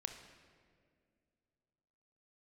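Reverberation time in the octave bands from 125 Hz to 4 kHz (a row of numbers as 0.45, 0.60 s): 2.9, 2.8, 2.6, 1.8, 1.8, 1.3 s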